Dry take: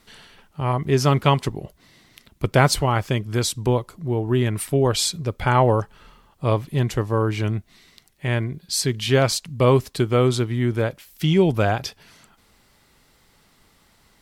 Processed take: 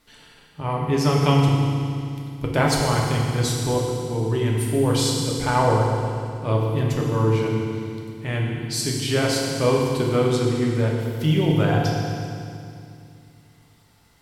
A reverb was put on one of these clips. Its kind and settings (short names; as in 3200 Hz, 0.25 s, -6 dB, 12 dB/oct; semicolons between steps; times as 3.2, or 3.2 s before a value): FDN reverb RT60 2.4 s, low-frequency decay 1.35×, high-frequency decay 1×, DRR -2.5 dB; gain -5.5 dB